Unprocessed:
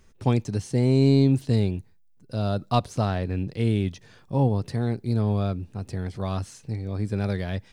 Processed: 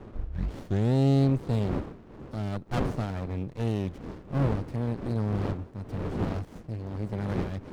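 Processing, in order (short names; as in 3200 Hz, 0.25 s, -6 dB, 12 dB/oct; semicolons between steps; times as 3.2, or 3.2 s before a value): tape start at the beginning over 0.94 s; wind noise 430 Hz -33 dBFS; running maximum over 33 samples; gain -3.5 dB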